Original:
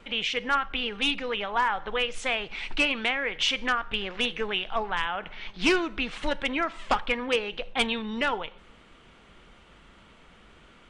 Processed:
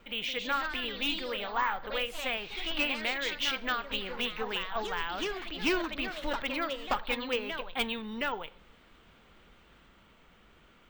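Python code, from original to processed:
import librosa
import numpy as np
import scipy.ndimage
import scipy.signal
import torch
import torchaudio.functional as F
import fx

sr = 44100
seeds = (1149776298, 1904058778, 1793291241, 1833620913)

y = np.repeat(x[::2], 2)[:len(x)]
y = fx.echo_pitch(y, sr, ms=177, semitones=2, count=3, db_per_echo=-6.0)
y = y * librosa.db_to_amplitude(-6.0)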